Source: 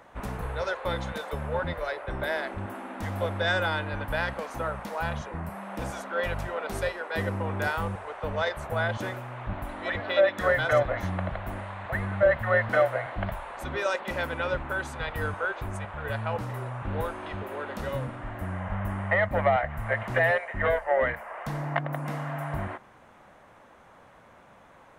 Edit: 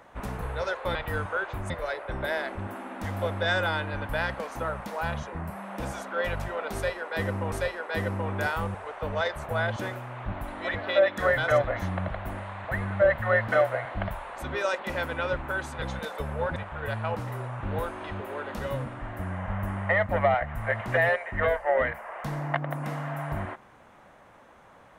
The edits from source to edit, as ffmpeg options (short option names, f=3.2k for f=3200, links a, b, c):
-filter_complex "[0:a]asplit=6[a][b][c][d][e][f];[a]atrim=end=0.952[g];[b]atrim=start=15.028:end=15.782[h];[c]atrim=start=1.688:end=7.512[i];[d]atrim=start=6.728:end=15.032[j];[e]atrim=start=0.948:end=1.692[k];[f]atrim=start=15.778[l];[g][h]acrossfade=d=0.004:c1=hsin:c2=hsin[m];[m][i]acrossfade=d=0.004:c1=hsin:c2=hsin[n];[n][j]acrossfade=d=0.004:c1=hsin:c2=hsin[o];[o][k]acrossfade=d=0.004:c1=hsin:c2=hsin[p];[p][l]acrossfade=d=0.004:c1=hsin:c2=hsin"